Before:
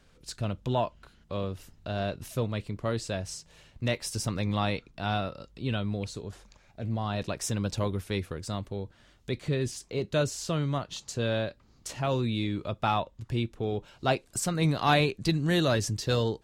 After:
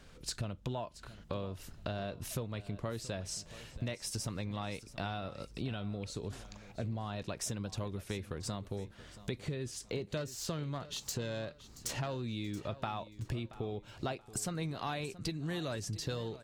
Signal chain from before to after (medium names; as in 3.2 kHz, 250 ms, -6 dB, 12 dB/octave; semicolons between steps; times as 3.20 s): 10.17–12.32 s: self-modulated delay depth 0.077 ms; compression 12:1, threshold -39 dBFS, peak gain reduction 21 dB; feedback delay 678 ms, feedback 33%, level -16.5 dB; trim +4.5 dB